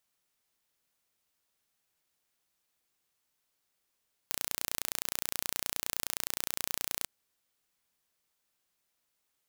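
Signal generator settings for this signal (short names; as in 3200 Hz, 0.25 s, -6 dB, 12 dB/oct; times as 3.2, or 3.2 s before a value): pulse train 29.6/s, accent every 0, -5 dBFS 2.76 s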